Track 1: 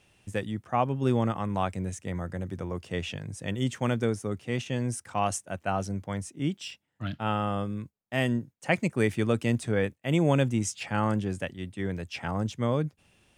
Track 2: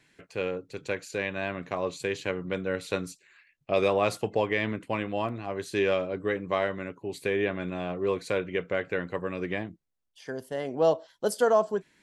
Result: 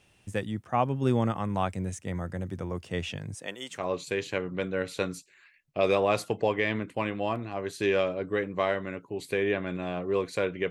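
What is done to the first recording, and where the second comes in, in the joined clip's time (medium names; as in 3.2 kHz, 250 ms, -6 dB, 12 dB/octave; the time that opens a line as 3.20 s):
track 1
3.34–3.85 s: high-pass 260 Hz -> 1.3 kHz
3.77 s: go over to track 2 from 1.70 s, crossfade 0.16 s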